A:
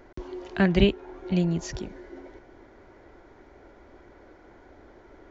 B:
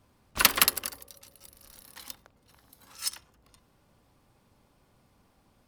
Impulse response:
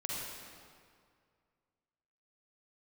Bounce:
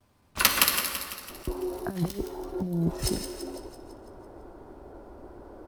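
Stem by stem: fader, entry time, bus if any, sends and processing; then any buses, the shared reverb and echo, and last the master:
+0.5 dB, 1.30 s, no send, no echo send, low-pass 1.2 kHz 24 dB/octave; compressor with a negative ratio -27 dBFS, ratio -0.5
0.0 dB, 0.00 s, send -3.5 dB, echo send -6 dB, gate with hold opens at -56 dBFS; flange 0.79 Hz, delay 8 ms, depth 8.2 ms, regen -42%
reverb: on, RT60 2.1 s, pre-delay 40 ms
echo: feedback delay 167 ms, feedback 56%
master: none

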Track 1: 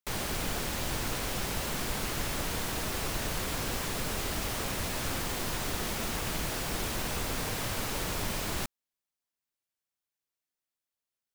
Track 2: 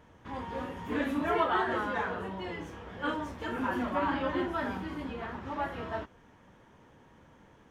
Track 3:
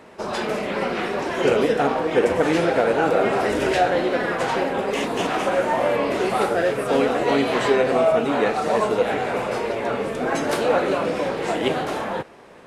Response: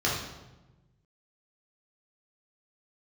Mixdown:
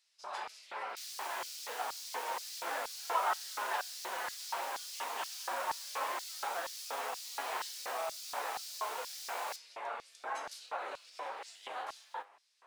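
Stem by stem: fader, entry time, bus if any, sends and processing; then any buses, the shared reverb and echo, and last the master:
-6.0 dB, 0.90 s, no send, upward compressor, threshold -54 dBFS
-4.5 dB, 1.75 s, no send, none
-12.0 dB, 0.00 s, no send, peak limiter -13.5 dBFS, peak gain reduction 6.5 dB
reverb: none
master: bass shelf 91 Hz -8 dB; flange 0.16 Hz, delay 9.1 ms, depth 9.6 ms, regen +68%; LFO high-pass square 2.1 Hz 900–4800 Hz

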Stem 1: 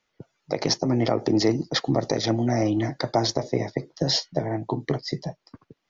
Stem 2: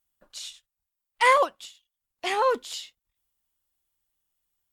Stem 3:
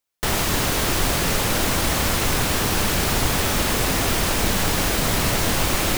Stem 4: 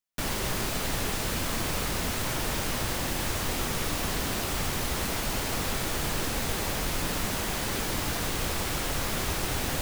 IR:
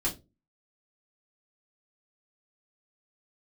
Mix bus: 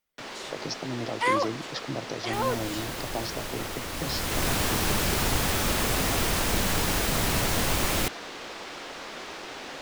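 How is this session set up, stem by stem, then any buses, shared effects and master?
-11.0 dB, 0.00 s, no send, none
-6.0 dB, 0.00 s, no send, none
3.88 s -16 dB -> 4.48 s -5 dB, 2.10 s, no send, none
-5.5 dB, 0.00 s, no send, three-band isolator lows -23 dB, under 250 Hz, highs -23 dB, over 6.1 kHz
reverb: none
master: none

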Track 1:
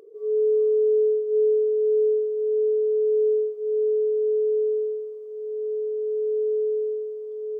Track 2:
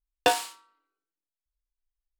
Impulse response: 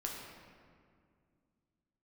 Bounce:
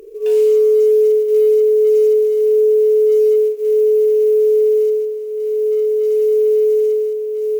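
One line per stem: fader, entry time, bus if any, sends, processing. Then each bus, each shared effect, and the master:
+0.5 dB, 0.00 s, send -12 dB, short-mantissa float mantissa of 4-bit; peaking EQ 340 Hz +10.5 dB 2.3 oct
-19.5 dB, 0.00 s, no send, peak limiter -11.5 dBFS, peak gain reduction 4.5 dB; level flattener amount 70%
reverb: on, RT60 2.2 s, pre-delay 7 ms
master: fifteen-band graphic EQ 630 Hz -4 dB, 2.5 kHz +10 dB, 6.3 kHz +5 dB, 16 kHz +12 dB; compression 3:1, threshold -11 dBFS, peak gain reduction 4 dB

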